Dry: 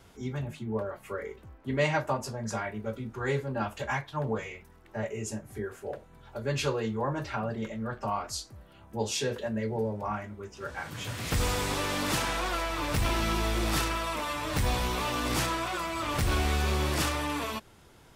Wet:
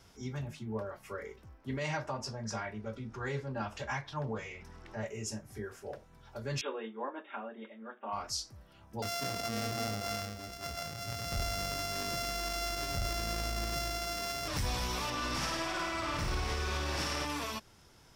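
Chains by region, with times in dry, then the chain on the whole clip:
1.97–5.01 s: upward compressor, threshold -34 dBFS + distance through air 51 m
6.61–8.13 s: brick-wall FIR band-pass 210–3800 Hz + upward expansion, over -41 dBFS
9.02–14.48 s: sorted samples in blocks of 64 samples + band-stop 900 Hz, Q 11 + decay stretcher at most 36 dB/s
15.10–17.25 s: low-pass 4 kHz 6 dB/octave + flutter echo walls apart 8.9 m, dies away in 1.2 s
whole clip: peaking EQ 5.4 kHz +10.5 dB 0.36 oct; peak limiter -21 dBFS; peaking EQ 400 Hz -2.5 dB 1.5 oct; trim -4 dB

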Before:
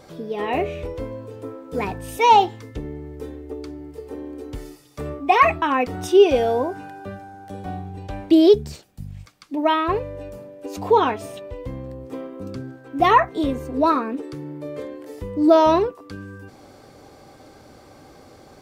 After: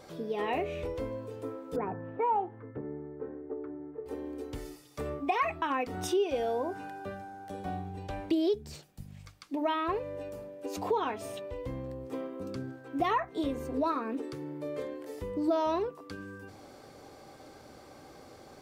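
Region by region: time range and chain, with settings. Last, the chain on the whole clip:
1.76–4.06 s: Chebyshev band-pass 110–1600 Hz, order 3 + distance through air 140 m
whole clip: bass shelf 140 Hz -4 dB; hum notches 50/100/150/200/250/300 Hz; compression 3:1, threshold -25 dBFS; trim -4 dB

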